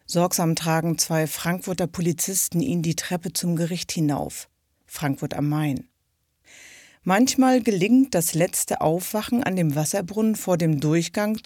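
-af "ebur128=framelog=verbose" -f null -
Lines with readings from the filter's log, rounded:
Integrated loudness:
  I:         -22.7 LUFS
  Threshold: -33.2 LUFS
Loudness range:
  LRA:         6.2 LU
  Threshold: -43.4 LUFS
  LRA low:   -27.2 LUFS
  LRA high:  -21.1 LUFS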